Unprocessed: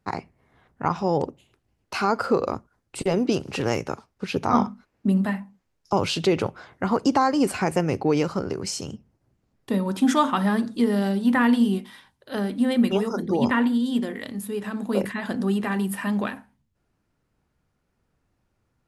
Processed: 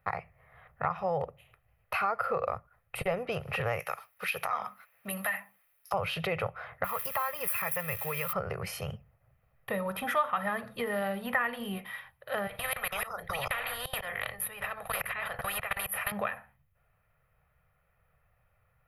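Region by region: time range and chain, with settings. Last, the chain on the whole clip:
0:03.79–0:05.94: spectral tilt +4.5 dB per octave + downward compressor, threshold −25 dBFS
0:06.84–0:08.33: spike at every zero crossing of −22 dBFS + parametric band 310 Hz −12 dB 2.6 octaves + notch comb filter 750 Hz
0:12.47–0:16.12: low-shelf EQ 150 Hz +6.5 dB + output level in coarse steps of 23 dB + every bin compressed towards the loudest bin 4 to 1
whole clip: drawn EQ curve 150 Hz 0 dB, 280 Hz −20 dB, 500 Hz +1 dB, 2,300 Hz +7 dB, 4,300 Hz −11 dB, 7,700 Hz −21 dB, 11,000 Hz +7 dB; downward compressor 2.5 to 1, threshold −32 dBFS; comb filter 1.6 ms, depth 41%

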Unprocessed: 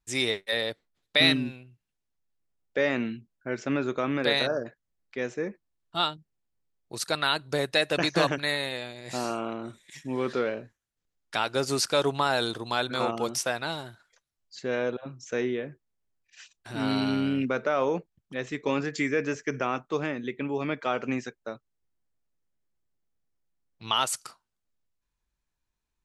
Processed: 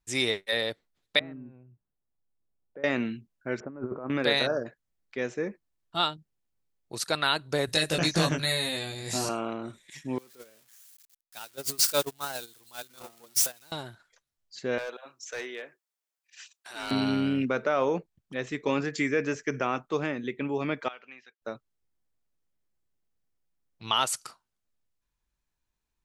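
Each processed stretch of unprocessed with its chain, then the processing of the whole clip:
0:01.19–0:02.84: Bessel low-pass filter 1,000 Hz, order 4 + downward compressor 2 to 1, threshold −52 dBFS
0:03.60–0:04.10: inverse Chebyshev low-pass filter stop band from 6,700 Hz, stop band 80 dB + compressor whose output falls as the input rises −34 dBFS, ratio −0.5
0:07.67–0:09.29: bass and treble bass +10 dB, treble +12 dB + downward compressor 1.5 to 1, threshold −32 dBFS + double-tracking delay 19 ms −2.5 dB
0:10.18–0:13.72: spike at every zero crossing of −17 dBFS + noise gate −22 dBFS, range −29 dB
0:14.78–0:16.91: high-pass filter 720 Hz + high-shelf EQ 5,600 Hz +5.5 dB + hard clipping −29.5 dBFS
0:20.88–0:21.42: low-pass filter 3,400 Hz 24 dB per octave + first difference
whole clip: no processing

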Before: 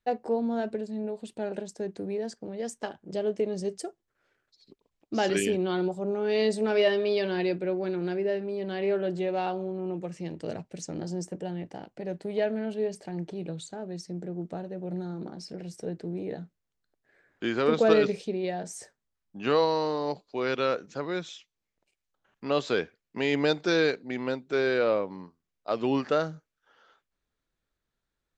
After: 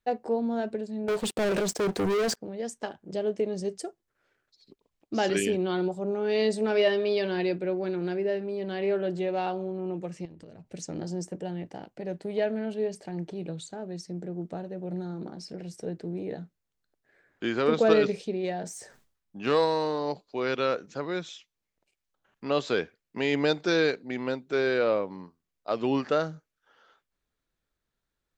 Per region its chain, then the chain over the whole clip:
0:01.08–0:02.37: high-pass filter 85 Hz + parametric band 240 Hz −8 dB 0.41 octaves + leveller curve on the samples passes 5
0:10.25–0:10.74: downward compressor 8 to 1, threshold −47 dBFS + low-shelf EQ 170 Hz +10 dB
0:18.36–0:20.00: phase distortion by the signal itself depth 0.061 ms + level that may fall only so fast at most 98 dB per second
whole clip: no processing

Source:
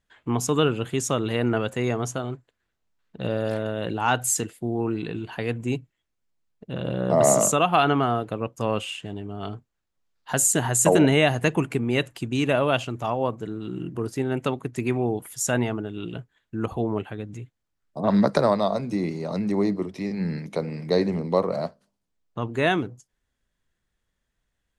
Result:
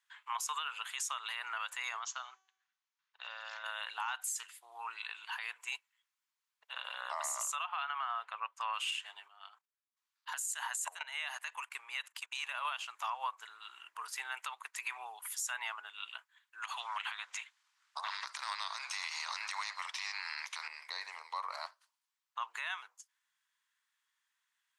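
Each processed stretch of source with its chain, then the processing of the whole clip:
0:01.99–0:03.64: tuned comb filter 380 Hz, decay 0.77 s, mix 50% + bad sample-rate conversion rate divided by 3×, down none, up filtered
0:04.27–0:04.72: tuned comb filter 63 Hz, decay 0.22 s, mix 30% + highs frequency-modulated by the lows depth 0.15 ms
0:07.64–0:08.74: low-pass filter 8,500 Hz + bass and treble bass −3 dB, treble −10 dB
0:09.28–0:12.65: output level in coarse steps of 15 dB + transient designer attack +6 dB, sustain −3 dB
0:16.62–0:20.68: low-pass filter 7,300 Hz + low-shelf EQ 260 Hz −9 dB + every bin compressed towards the loudest bin 2 to 1
whole clip: elliptic high-pass filter 970 Hz, stop band 80 dB; downward compressor 5 to 1, threshold −33 dBFS; brickwall limiter −28 dBFS; level +1 dB

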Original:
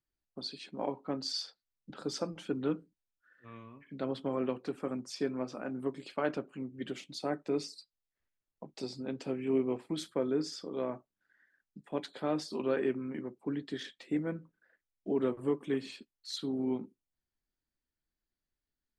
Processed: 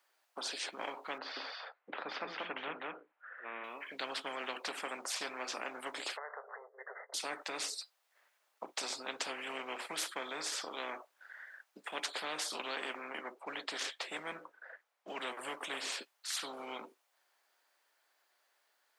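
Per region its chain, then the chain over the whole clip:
0:01.18–0:03.64: low-pass filter 2,300 Hz 24 dB per octave + single-tap delay 185 ms −4.5 dB
0:06.17–0:07.14: high-frequency loss of the air 470 metres + downward compressor 3 to 1, threshold −52 dBFS + linear-phase brick-wall band-pass 400–2,100 Hz
0:12.75–0:15.08: high-pass filter 110 Hz + one half of a high-frequency compander decoder only
whole clip: high-pass filter 610 Hz 24 dB per octave; high-shelf EQ 2,600 Hz −11 dB; every bin compressed towards the loudest bin 4 to 1; level +5 dB

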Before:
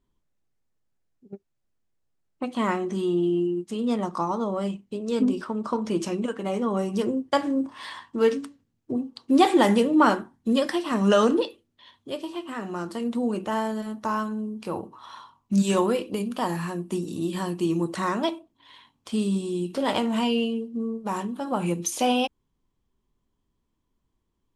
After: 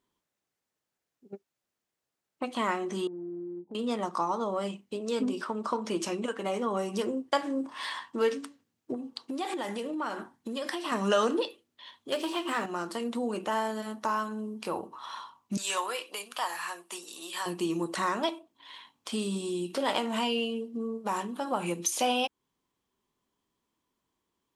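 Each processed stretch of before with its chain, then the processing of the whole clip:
0:03.07–0:03.75: linear-phase brick-wall low-pass 1,000 Hz + downward compressor 4 to 1, threshold −36 dBFS
0:08.94–0:10.92: hum removal 48.72 Hz, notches 3 + downward compressor 10 to 1, threshold −28 dBFS
0:12.12–0:12.66: mains-hum notches 50/100/150/200/250/300/350/400 Hz + leveller curve on the samples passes 2
0:15.57–0:17.46: high-pass filter 890 Hz + hard clipping −19.5 dBFS
whole clip: high-pass filter 540 Hz 6 dB per octave; downward compressor 1.5 to 1, threshold −36 dBFS; level +3.5 dB

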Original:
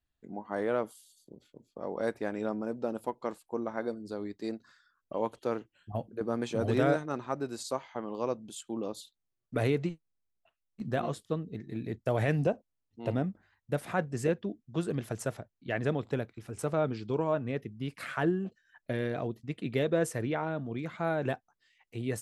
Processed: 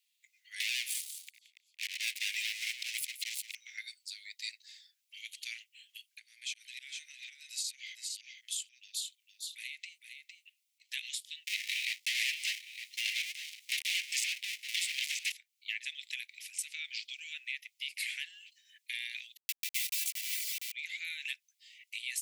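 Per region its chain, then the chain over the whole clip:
0:00.60–0:03.55: volume swells 154 ms + leveller curve on the samples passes 5 + single-tap delay 173 ms −14 dB
0:06.19–0:10.89: volume swells 146 ms + downward compressor 5 to 1, threshold −40 dBFS + single-tap delay 458 ms −7.5 dB
0:11.47–0:15.32: gap after every zero crossing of 0.29 ms + mid-hump overdrive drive 31 dB, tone 4,700 Hz, clips at −14 dBFS + single-tap delay 910 ms −19.5 dB
0:19.37–0:20.72: hold until the input has moved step −29.5 dBFS + high-shelf EQ 9,800 Hz +9 dB + comb filter 3 ms, depth 94%
whole clip: Butterworth high-pass 2,100 Hz 72 dB per octave; downward compressor 3 to 1, threshold −50 dBFS; level +14.5 dB

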